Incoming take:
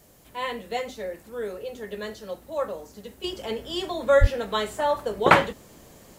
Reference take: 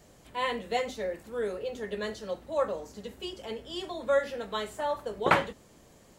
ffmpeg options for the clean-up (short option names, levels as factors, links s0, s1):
-filter_complex "[0:a]asplit=3[s0][s1][s2];[s0]afade=t=out:st=4.2:d=0.02[s3];[s1]highpass=f=140:w=0.5412,highpass=f=140:w=1.3066,afade=t=in:st=4.2:d=0.02,afade=t=out:st=4.32:d=0.02[s4];[s2]afade=t=in:st=4.32:d=0.02[s5];[s3][s4][s5]amix=inputs=3:normalize=0,agate=range=0.0891:threshold=0.00708,asetnsamples=n=441:p=0,asendcmd='3.24 volume volume -7dB',volume=1"